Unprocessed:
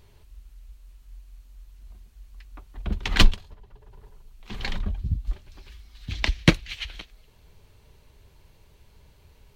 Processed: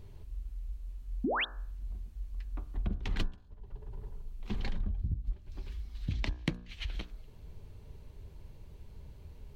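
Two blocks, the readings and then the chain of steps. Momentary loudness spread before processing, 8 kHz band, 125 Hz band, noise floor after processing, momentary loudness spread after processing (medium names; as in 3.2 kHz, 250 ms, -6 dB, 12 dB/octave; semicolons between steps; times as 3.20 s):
20 LU, -19.0 dB, -8.5 dB, -52 dBFS, 17 LU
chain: tilt shelf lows +6.5 dB, about 630 Hz; painted sound rise, 1.24–1.45 s, 210–3900 Hz -21 dBFS; compression 10:1, threshold -29 dBFS, peak gain reduction 27 dB; de-hum 60.07 Hz, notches 29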